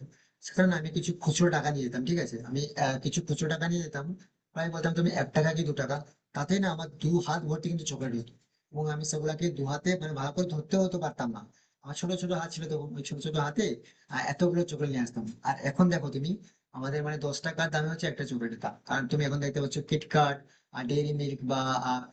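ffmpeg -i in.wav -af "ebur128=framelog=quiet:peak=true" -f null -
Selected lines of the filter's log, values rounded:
Integrated loudness:
  I:         -30.9 LUFS
  Threshold: -41.1 LUFS
Loudness range:
  LRA:         2.8 LU
  Threshold: -51.3 LUFS
  LRA low:   -32.8 LUFS
  LRA high:  -30.0 LUFS
True peak:
  Peak:      -11.8 dBFS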